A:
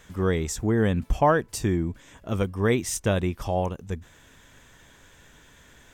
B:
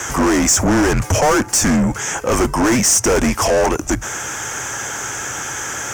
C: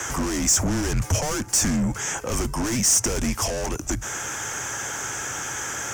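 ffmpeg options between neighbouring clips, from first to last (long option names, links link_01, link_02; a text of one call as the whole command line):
ffmpeg -i in.wav -filter_complex "[0:a]afreqshift=-130,asplit=2[link_01][link_02];[link_02]highpass=frequency=720:poles=1,volume=40dB,asoftclip=type=tanh:threshold=-6.5dB[link_03];[link_01][link_03]amix=inputs=2:normalize=0,lowpass=frequency=1800:poles=1,volume=-6dB,highshelf=frequency=4900:width_type=q:width=3:gain=8" out.wav
ffmpeg -i in.wav -filter_complex "[0:a]acrossover=split=200|3000[link_01][link_02][link_03];[link_02]acompressor=threshold=-25dB:ratio=4[link_04];[link_01][link_04][link_03]amix=inputs=3:normalize=0,volume=-4.5dB" out.wav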